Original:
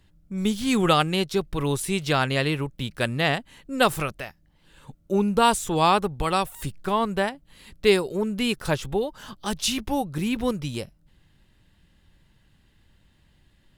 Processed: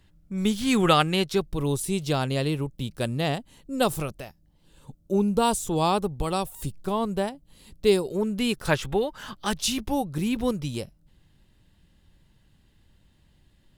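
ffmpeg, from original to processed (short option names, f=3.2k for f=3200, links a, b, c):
-af "asetnsamples=n=441:p=0,asendcmd='1.41 equalizer g -11;8.05 equalizer g -4;8.67 equalizer g 4.5;9.58 equalizer g -4.5',equalizer=f=1.8k:t=o:w=1.7:g=0.5"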